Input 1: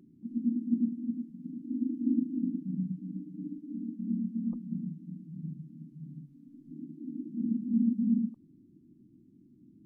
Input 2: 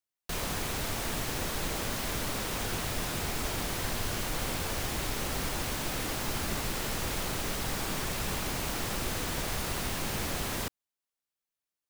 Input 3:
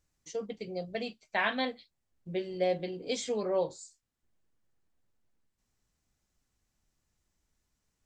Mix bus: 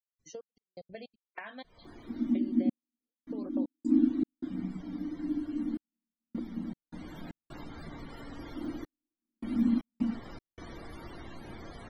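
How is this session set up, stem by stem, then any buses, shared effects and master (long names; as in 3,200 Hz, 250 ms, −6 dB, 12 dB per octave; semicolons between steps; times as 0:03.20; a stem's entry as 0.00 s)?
+3.0 dB, 1.85 s, no bus, no send, high-pass with resonance 360 Hz, resonance Q 4.4
0:06.74 −10 dB → 0:07.32 −0.5 dB, 1.35 s, bus A, no send, notch filter 2,600 Hz, Q 12; tuned comb filter 230 Hz, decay 0.45 s, harmonics all, mix 60%; hum removal 50.36 Hz, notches 32
+1.5 dB, 0.00 s, bus A, no send, gate pattern "x.xxx..xxx.xx.x" 185 BPM −60 dB
bus A: 0.0 dB, spectral peaks only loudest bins 64; downward compressor 12 to 1, threshold −41 dBFS, peak gain reduction 18.5 dB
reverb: not used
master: gate pattern ".xx.xx.xxxxxxx.." 78 BPM −60 dB; parametric band 6,700 Hz −9 dB 0.28 octaves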